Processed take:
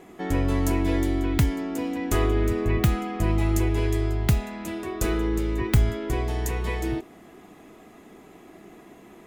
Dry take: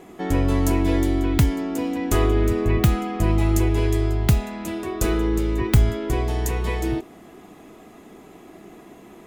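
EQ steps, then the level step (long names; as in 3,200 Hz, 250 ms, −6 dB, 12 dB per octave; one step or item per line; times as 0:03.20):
parametric band 1,900 Hz +2.5 dB
−3.5 dB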